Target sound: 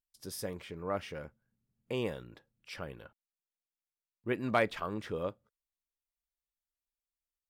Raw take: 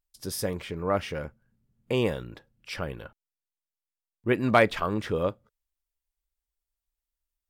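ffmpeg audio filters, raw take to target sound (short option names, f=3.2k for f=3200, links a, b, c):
-af "lowshelf=f=63:g=-8,volume=-8.5dB"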